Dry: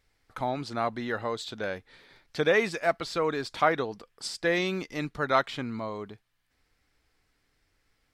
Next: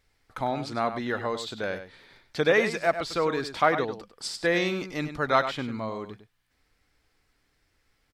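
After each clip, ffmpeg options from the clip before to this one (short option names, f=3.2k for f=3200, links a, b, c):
-filter_complex "[0:a]asplit=2[a][b];[b]adelay=99.13,volume=-10dB,highshelf=f=4k:g=-2.23[c];[a][c]amix=inputs=2:normalize=0,volume=1.5dB"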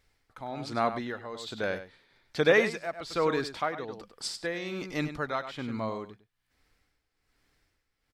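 -af "tremolo=f=1.2:d=0.73"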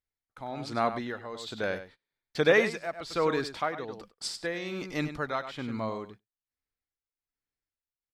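-af "agate=range=-25dB:threshold=-50dB:ratio=16:detection=peak"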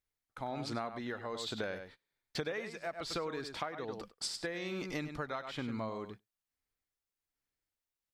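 -af "acompressor=threshold=-36dB:ratio=16,volume=1.5dB"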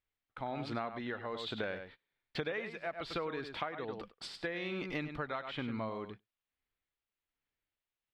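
-af "highshelf=f=4.5k:t=q:w=1.5:g=-12"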